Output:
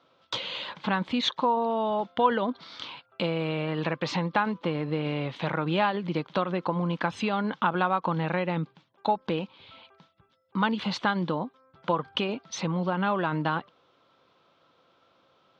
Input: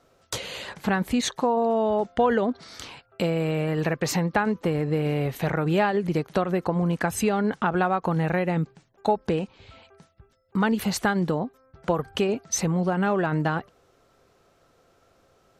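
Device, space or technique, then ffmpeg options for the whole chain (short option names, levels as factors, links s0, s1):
kitchen radio: -af "highpass=190,equalizer=f=230:t=q:w=4:g=-3,equalizer=f=410:t=q:w=4:g=-9,equalizer=f=710:t=q:w=4:g=-6,equalizer=f=1000:t=q:w=4:g=5,equalizer=f=1800:t=q:w=4:g=-5,equalizer=f=3400:t=q:w=4:g=7,lowpass=f=4400:w=0.5412,lowpass=f=4400:w=1.3066"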